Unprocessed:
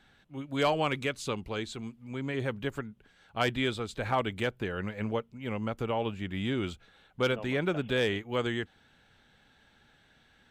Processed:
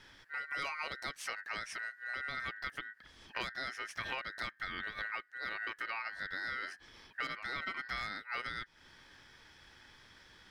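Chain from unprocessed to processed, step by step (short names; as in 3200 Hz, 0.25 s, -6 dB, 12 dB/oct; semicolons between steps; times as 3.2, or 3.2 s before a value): compressor 6:1, threshold -42 dBFS, peak gain reduction 18.5 dB; ring modulator 1700 Hz; gain +7 dB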